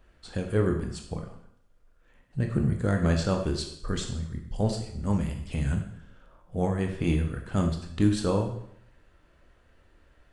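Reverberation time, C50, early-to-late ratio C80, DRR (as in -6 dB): 0.70 s, 7.0 dB, 10.0 dB, 3.0 dB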